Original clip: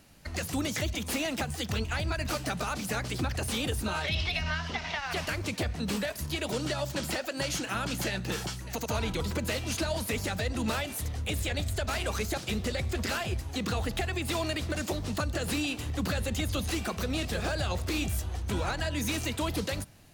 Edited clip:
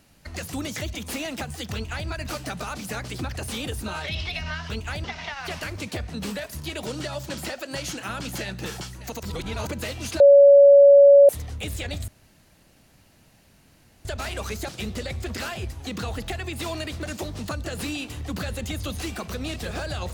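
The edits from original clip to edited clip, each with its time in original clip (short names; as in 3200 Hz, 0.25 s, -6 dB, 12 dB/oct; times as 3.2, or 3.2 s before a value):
1.74–2.08 copy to 4.7
8.89–9.33 reverse
9.86–10.95 bleep 564 Hz -8 dBFS
11.74 insert room tone 1.97 s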